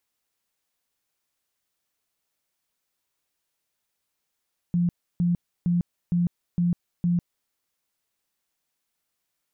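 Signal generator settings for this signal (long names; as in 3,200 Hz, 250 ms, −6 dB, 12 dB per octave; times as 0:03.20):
tone bursts 174 Hz, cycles 26, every 0.46 s, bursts 6, −19 dBFS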